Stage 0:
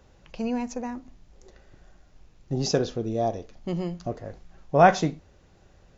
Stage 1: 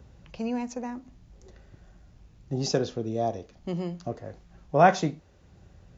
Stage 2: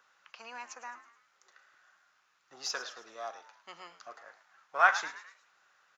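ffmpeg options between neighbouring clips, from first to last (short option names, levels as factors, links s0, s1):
-filter_complex "[0:a]highpass=51,acrossover=split=210|750|1700[s0][s1][s2][s3];[s0]acompressor=mode=upward:threshold=0.01:ratio=2.5[s4];[s4][s1][s2][s3]amix=inputs=4:normalize=0,volume=0.794"
-filter_complex "[0:a]asplit=2[s0][s1];[s1]aeval=exprs='clip(val(0),-1,0.0376)':c=same,volume=0.398[s2];[s0][s2]amix=inputs=2:normalize=0,highpass=f=1300:t=q:w=3.3,asplit=5[s3][s4][s5][s6][s7];[s4]adelay=107,afreqshift=99,volume=0.2[s8];[s5]adelay=214,afreqshift=198,volume=0.0923[s9];[s6]adelay=321,afreqshift=297,volume=0.0422[s10];[s7]adelay=428,afreqshift=396,volume=0.0195[s11];[s3][s8][s9][s10][s11]amix=inputs=5:normalize=0,volume=0.473"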